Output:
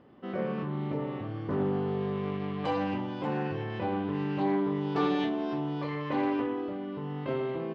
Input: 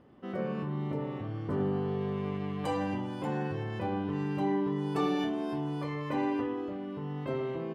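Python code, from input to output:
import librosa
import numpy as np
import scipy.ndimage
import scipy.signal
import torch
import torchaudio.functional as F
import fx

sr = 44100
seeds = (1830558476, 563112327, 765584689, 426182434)

y = scipy.signal.sosfilt(scipy.signal.butter(4, 5000.0, 'lowpass', fs=sr, output='sos'), x)
y = fx.low_shelf(y, sr, hz=93.0, db=-8.0)
y = fx.doppler_dist(y, sr, depth_ms=0.15)
y = F.gain(torch.from_numpy(y), 2.5).numpy()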